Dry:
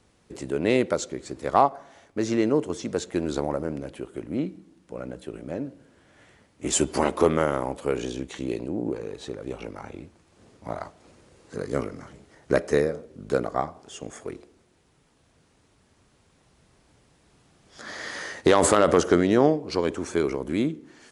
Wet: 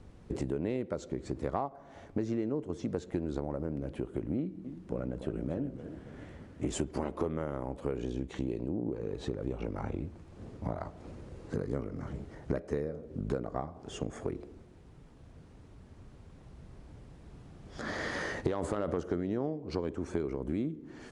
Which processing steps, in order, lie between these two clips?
tilt EQ -3 dB/octave; compression 6:1, threshold -33 dBFS, peak gain reduction 22 dB; 4.37–6.91 s: modulated delay 282 ms, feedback 52%, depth 218 cents, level -10.5 dB; trim +2 dB

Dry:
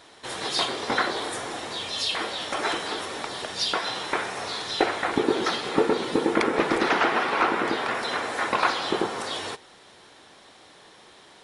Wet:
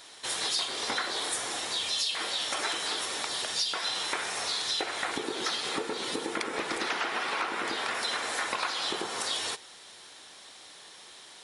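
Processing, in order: treble shelf 3.1 kHz +12 dB; compression, threshold -24 dBFS, peak gain reduction 10 dB; bass shelf 460 Hz -5.5 dB; trim -3 dB

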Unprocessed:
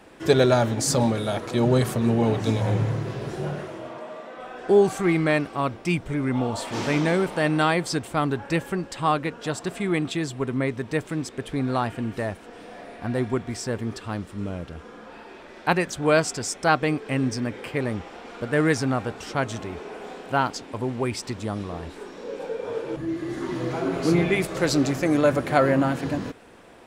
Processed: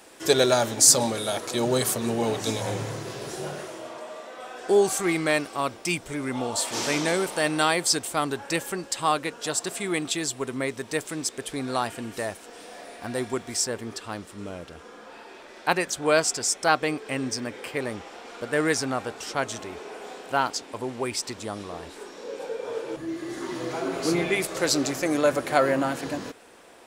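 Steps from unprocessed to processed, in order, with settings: tone controls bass -10 dB, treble +13 dB, from 13.64 s treble +7 dB; trim -1 dB

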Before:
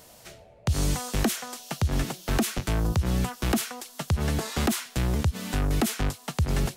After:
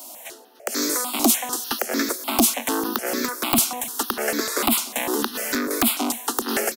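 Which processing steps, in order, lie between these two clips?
steep high-pass 230 Hz 96 dB/octave; treble shelf 10 kHz +9 dB; in parallel at 0 dB: gain riding 0.5 s; on the sum: integer overflow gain 10 dB; on a send: feedback delay 298 ms, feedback 51%, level -19 dB; on the sum: stepped phaser 6.7 Hz 470–2900 Hz; trim +4.5 dB

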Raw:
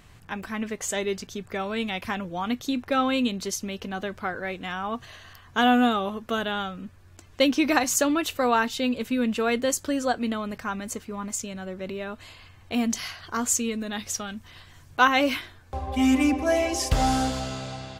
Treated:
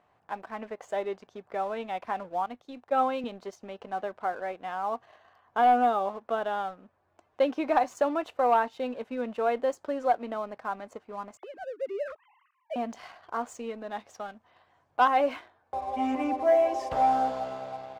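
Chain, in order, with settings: 11.37–12.76 s: formants replaced by sine waves; band-pass filter 730 Hz, Q 2.1; waveshaping leveller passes 1; 2.46–3.24 s: three bands expanded up and down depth 70%

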